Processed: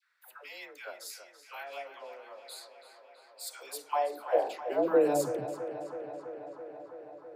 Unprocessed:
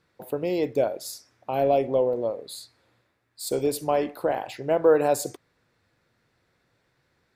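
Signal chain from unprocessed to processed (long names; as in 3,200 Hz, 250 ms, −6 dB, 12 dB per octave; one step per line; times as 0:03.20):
high-pass filter sweep 1,500 Hz → 130 Hz, 0:03.48–0:05.30
all-pass dispersion lows, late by 148 ms, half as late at 600 Hz
tape delay 329 ms, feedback 83%, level −10.5 dB, low-pass 4,500 Hz
level −7.5 dB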